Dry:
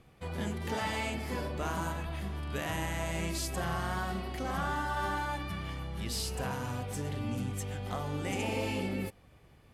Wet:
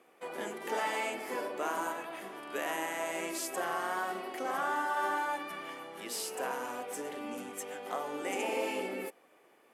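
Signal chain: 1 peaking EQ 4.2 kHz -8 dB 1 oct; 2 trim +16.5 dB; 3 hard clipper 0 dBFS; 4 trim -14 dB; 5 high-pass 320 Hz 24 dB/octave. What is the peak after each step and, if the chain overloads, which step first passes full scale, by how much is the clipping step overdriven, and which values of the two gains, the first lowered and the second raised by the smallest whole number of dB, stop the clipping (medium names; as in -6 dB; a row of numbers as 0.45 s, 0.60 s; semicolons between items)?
-21.5 dBFS, -5.0 dBFS, -5.0 dBFS, -19.0 dBFS, -20.0 dBFS; nothing clips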